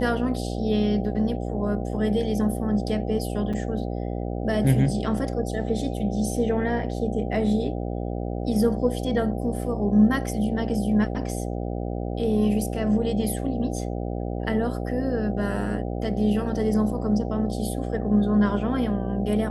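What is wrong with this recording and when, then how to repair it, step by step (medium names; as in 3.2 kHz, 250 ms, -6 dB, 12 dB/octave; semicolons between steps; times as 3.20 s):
buzz 60 Hz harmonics 13 -29 dBFS
3.53–3.54 s: dropout 5.6 ms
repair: de-hum 60 Hz, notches 13; interpolate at 3.53 s, 5.6 ms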